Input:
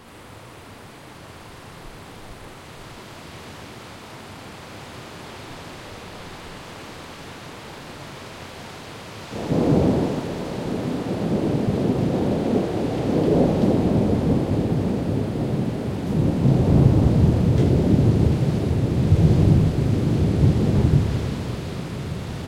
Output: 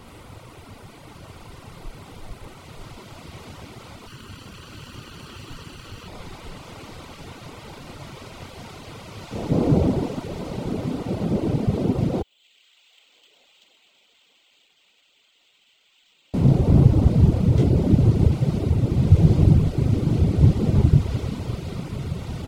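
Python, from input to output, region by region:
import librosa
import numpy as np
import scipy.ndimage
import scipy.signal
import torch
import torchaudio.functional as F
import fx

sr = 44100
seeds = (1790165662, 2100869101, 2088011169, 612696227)

y = fx.chain(x, sr, fx.lower_of_two(delay_ms=0.69),
    fx.peak_eq(hz=3000.0, db=3.5, octaves=1.1), at=(4.07, 6.08))
y = fx.chain(y, sr, fx.ladder_bandpass(hz=3600.0, resonance_pct=50),
    fx.resample_linear(factor=4), at=(12.22, 16.34))
y = fx.notch(y, sr, hz=1700.0, q=7.3)
y = fx.dereverb_blind(y, sr, rt60_s=0.84)
y = fx.low_shelf(y, sr, hz=110.0, db=8.5)
y = y * librosa.db_to_amplitude(-1.0)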